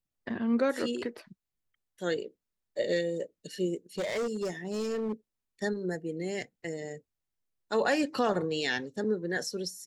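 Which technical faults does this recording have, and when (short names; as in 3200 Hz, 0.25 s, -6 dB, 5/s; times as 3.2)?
3.98–5.12 clipped -28 dBFS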